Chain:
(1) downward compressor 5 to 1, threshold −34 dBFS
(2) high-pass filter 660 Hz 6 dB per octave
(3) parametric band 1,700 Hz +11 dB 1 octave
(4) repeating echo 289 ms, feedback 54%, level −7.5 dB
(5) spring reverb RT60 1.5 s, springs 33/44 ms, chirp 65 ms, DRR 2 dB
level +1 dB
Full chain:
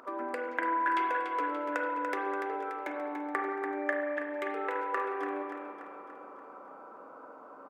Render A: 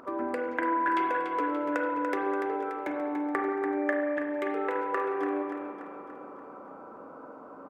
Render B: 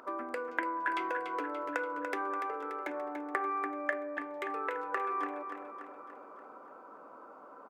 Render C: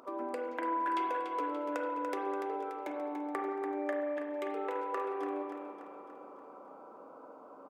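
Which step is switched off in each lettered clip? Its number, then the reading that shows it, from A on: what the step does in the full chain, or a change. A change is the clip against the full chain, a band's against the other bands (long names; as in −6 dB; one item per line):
2, change in crest factor −1.5 dB
5, echo-to-direct ratio 0.5 dB to −6.0 dB
3, 2 kHz band −8.0 dB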